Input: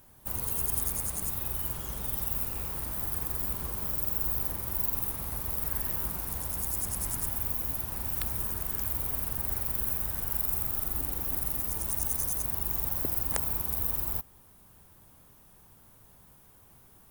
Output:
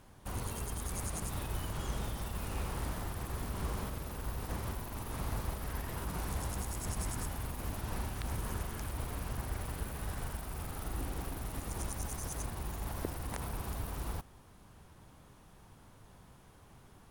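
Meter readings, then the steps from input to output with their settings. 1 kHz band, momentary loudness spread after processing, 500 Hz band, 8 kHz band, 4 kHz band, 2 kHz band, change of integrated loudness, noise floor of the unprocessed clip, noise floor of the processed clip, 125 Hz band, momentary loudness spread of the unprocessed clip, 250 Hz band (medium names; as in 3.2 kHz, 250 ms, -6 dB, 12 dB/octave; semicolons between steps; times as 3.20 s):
+0.5 dB, 20 LU, +0.5 dB, -8.5 dB, -1.0 dB, 0.0 dB, -10.5 dB, -57 dBFS, -59 dBFS, +1.0 dB, 4 LU, +1.0 dB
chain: peak limiter -22 dBFS, peak gain reduction 11 dB; distance through air 61 m; trim +3 dB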